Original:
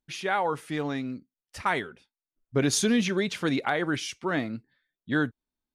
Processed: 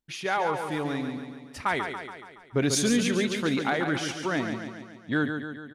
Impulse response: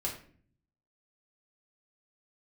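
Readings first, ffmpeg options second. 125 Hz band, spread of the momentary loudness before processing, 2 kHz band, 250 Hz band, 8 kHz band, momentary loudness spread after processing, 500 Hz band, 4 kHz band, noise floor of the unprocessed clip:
+0.5 dB, 13 LU, +0.5 dB, +0.5 dB, +0.5 dB, 15 LU, +0.5 dB, +0.5 dB, below −85 dBFS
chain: -af "aecho=1:1:141|282|423|564|705|846|987:0.447|0.255|0.145|0.0827|0.0472|0.0269|0.0153,acontrast=88,volume=-7.5dB"

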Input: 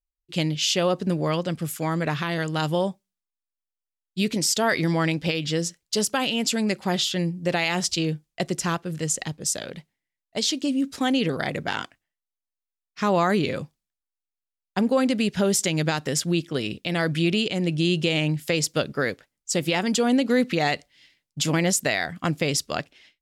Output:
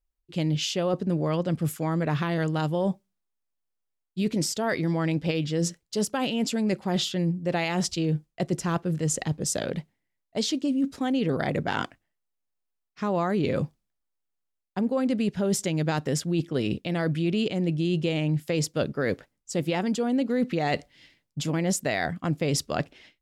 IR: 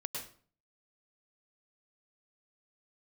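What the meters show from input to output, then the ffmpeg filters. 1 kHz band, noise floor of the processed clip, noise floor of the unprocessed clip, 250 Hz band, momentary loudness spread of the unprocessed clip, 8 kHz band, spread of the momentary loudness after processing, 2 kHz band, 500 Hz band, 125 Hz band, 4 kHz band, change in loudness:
−3.5 dB, −81 dBFS, below −85 dBFS, −1.5 dB, 8 LU, −6.0 dB, 5 LU, −6.0 dB, −2.5 dB, 0.0 dB, −7.0 dB, −3.0 dB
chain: -af "tiltshelf=frequency=1300:gain=5,areverse,acompressor=threshold=-27dB:ratio=5,areverse,volume=3.5dB"

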